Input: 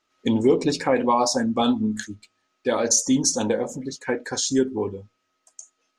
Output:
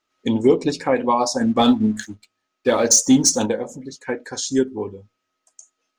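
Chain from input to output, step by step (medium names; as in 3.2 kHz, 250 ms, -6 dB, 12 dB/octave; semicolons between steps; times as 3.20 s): 1.41–3.46 s: waveshaping leveller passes 1; upward expansion 1.5:1, over -27 dBFS; trim +4 dB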